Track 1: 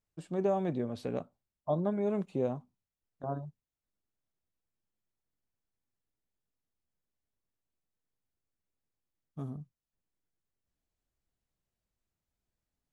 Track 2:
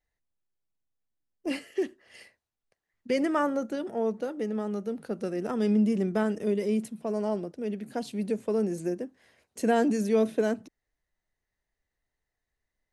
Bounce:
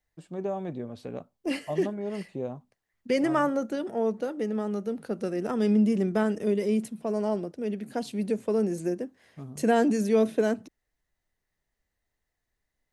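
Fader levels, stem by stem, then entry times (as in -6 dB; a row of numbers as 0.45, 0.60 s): -2.0, +1.5 dB; 0.00, 0.00 s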